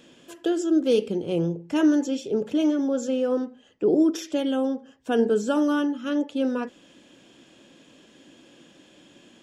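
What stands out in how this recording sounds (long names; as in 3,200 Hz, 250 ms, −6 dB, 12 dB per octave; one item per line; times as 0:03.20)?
background noise floor −56 dBFS
spectral slope −5.5 dB per octave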